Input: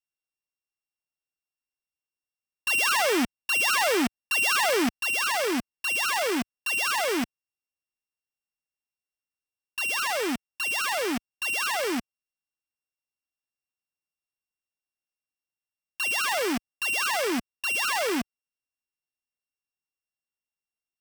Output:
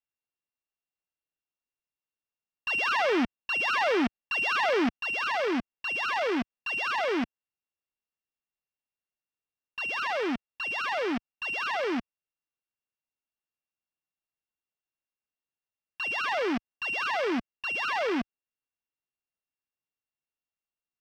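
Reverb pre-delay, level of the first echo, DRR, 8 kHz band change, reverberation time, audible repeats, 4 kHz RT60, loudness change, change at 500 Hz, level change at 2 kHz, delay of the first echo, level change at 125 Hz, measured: no reverb audible, no echo audible, no reverb audible, −20.0 dB, no reverb audible, no echo audible, no reverb audible, −3.5 dB, −1.0 dB, −3.0 dB, no echo audible, −1.5 dB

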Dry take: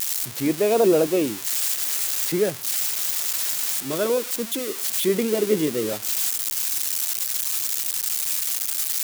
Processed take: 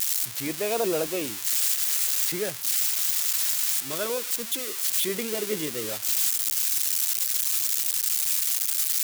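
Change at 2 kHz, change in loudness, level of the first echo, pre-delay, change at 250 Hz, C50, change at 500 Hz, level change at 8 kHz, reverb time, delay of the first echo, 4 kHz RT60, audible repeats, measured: −1.5 dB, −1.5 dB, no echo audible, no reverb audible, −10.0 dB, no reverb audible, −8.5 dB, 0.0 dB, no reverb audible, no echo audible, no reverb audible, no echo audible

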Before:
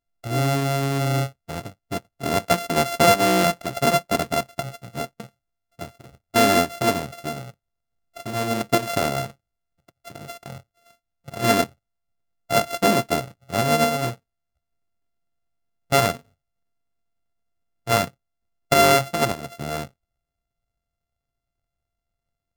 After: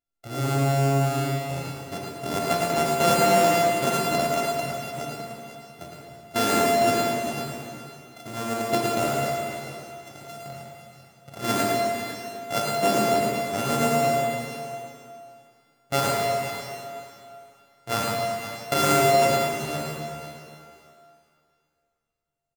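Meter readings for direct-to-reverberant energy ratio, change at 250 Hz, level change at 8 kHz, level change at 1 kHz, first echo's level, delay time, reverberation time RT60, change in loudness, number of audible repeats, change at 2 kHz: −4.0 dB, −2.0 dB, −1.0 dB, −0.5 dB, −4.0 dB, 109 ms, 2.6 s, −2.0 dB, 2, −3.0 dB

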